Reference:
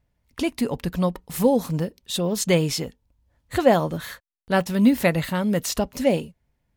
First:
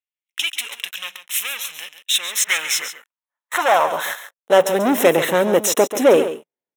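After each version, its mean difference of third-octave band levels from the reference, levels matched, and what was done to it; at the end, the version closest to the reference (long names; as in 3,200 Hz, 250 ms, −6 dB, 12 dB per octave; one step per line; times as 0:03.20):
12.0 dB: leveller curve on the samples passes 5
high-pass filter sweep 2,700 Hz → 400 Hz, 0:01.89–0:04.97
Butterworth band-reject 4,600 Hz, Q 3.1
on a send: single-tap delay 137 ms −11.5 dB
on the sum: level −7 dB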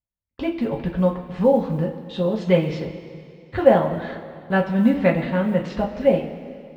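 8.5 dB: noise gate −43 dBFS, range −25 dB
Bessel low-pass filter 2,200 Hz, order 4
floating-point word with a short mantissa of 6 bits
coupled-rooms reverb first 0.23 s, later 2.5 s, from −17 dB, DRR −1 dB
level −2 dB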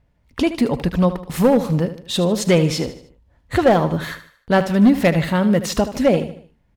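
4.5 dB: low-pass filter 3,000 Hz 6 dB per octave
in parallel at −1.5 dB: downward compressor, threshold −28 dBFS, peak gain reduction 16 dB
on the sum: hard clipping −11 dBFS, distortion −17 dB
repeating echo 76 ms, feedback 43%, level −12.5 dB
level +3.5 dB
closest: third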